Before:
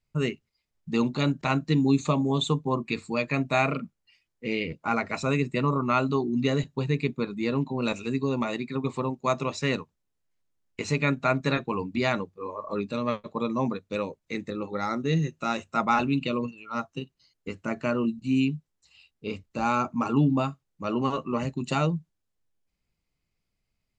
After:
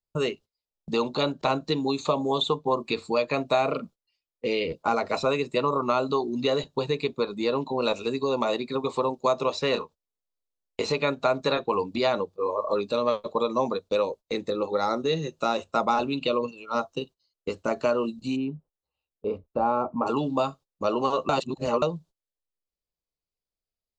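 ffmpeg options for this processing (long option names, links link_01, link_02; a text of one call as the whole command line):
ffmpeg -i in.wav -filter_complex "[0:a]asettb=1/sr,asplit=3[link_01][link_02][link_03];[link_01]atrim=end=9.714[link_04];[link_02]atrim=start=9.71:end=10.92,asetpts=PTS-STARTPTS,afade=type=in:duration=0.004:curve=qsin,afade=type=out:start_time=1.206:duration=0.004:curve=qsin,asplit=2[link_05][link_06];[link_06]adelay=26,volume=-6.5dB[link_07];[link_05][link_07]amix=inputs=2:normalize=0,atrim=end_sample=53361[link_08];[link_03]atrim=start=10.916[link_09];[link_04][link_08]acrossfade=duration=0.004:curve1=hsin:curve2=qsin[link_10];[link_10][link_09]acrossfade=duration=0.004:curve1=qsin:curve2=hsin,asplit=3[link_11][link_12][link_13];[link_11]afade=type=out:start_time=18.35:duration=0.02[link_14];[link_12]lowpass=1100,afade=type=in:start_time=18.35:duration=0.02,afade=type=out:start_time=20.06:duration=0.02[link_15];[link_13]afade=type=in:start_time=20.06:duration=0.02[link_16];[link_14][link_15][link_16]amix=inputs=3:normalize=0,asplit=3[link_17][link_18][link_19];[link_17]atrim=end=21.292[link_20];[link_18]atrim=start=21.288:end=21.822,asetpts=PTS-STARTPTS,areverse[link_21];[link_19]atrim=start=21.818[link_22];[link_20][link_21]acrossfade=duration=0.004:curve1=hsin:curve2=hsin[link_23];[link_23][link_22]acrossfade=duration=0.004:curve1=hsin:curve2=hsin,agate=range=-19dB:threshold=-45dB:ratio=16:detection=peak,equalizer=frequency=125:width_type=o:width=1:gain=-7,equalizer=frequency=250:width_type=o:width=1:gain=-3,equalizer=frequency=500:width_type=o:width=1:gain=8,equalizer=frequency=1000:width_type=o:width=1:gain=3,equalizer=frequency=2000:width_type=o:width=1:gain=-10,equalizer=frequency=4000:width_type=o:width=1:gain=7,acrossover=split=630|4200[link_24][link_25][link_26];[link_24]acompressor=threshold=-32dB:ratio=4[link_27];[link_25]acompressor=threshold=-28dB:ratio=4[link_28];[link_26]acompressor=threshold=-52dB:ratio=4[link_29];[link_27][link_28][link_29]amix=inputs=3:normalize=0,volume=4.5dB" out.wav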